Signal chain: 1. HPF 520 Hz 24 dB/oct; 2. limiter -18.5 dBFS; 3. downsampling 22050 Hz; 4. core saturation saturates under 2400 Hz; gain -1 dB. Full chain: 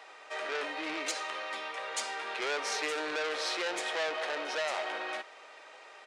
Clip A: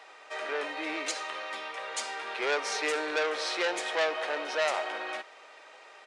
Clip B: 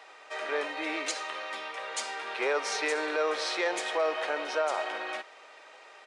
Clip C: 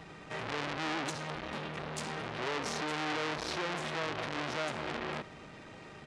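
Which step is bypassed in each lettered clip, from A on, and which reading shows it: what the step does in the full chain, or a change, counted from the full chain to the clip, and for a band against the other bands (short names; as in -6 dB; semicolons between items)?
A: 2, crest factor change +3.5 dB; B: 4, crest factor change -3.0 dB; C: 1, 250 Hz band +9.0 dB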